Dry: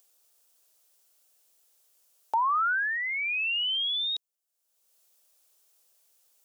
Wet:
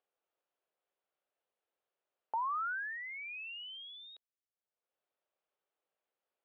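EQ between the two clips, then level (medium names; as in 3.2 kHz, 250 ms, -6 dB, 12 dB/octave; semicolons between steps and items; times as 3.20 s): boxcar filter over 6 samples; distance through air 470 m; -7.0 dB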